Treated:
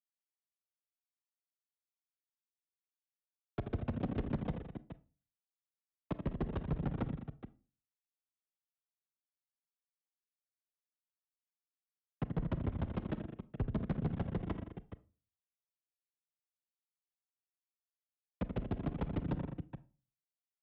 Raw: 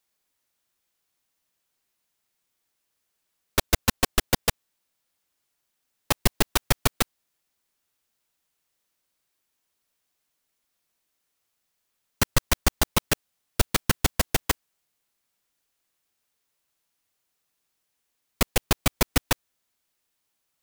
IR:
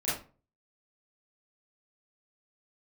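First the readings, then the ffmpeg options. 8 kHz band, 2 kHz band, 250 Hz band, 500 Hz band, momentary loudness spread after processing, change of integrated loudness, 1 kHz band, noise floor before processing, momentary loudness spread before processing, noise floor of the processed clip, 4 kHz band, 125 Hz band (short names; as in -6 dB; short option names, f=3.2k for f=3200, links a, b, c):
under -40 dB, -24.5 dB, -6.0 dB, -12.0 dB, 13 LU, -13.5 dB, -17.0 dB, -78 dBFS, 5 LU, under -85 dBFS, -32.0 dB, -6.5 dB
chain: -filter_complex "[0:a]aresample=8000,volume=12.5dB,asoftclip=hard,volume=-12.5dB,aresample=44100,agate=range=-33dB:threshold=-29dB:ratio=3:detection=peak,aecho=1:1:82|166|205|421:0.266|0.126|0.133|0.188,afreqshift=25,bandpass=f=180:t=q:w=1.4:csg=0,aphaser=in_gain=1:out_gain=1:delay=3.1:decay=0.3:speed=0.72:type=sinusoidal,asoftclip=type=tanh:threshold=-31dB,asplit=2[a][b];[1:a]atrim=start_sample=2205[c];[b][c]afir=irnorm=-1:irlink=0,volume=-23dB[d];[a][d]amix=inputs=2:normalize=0,volume=1.5dB"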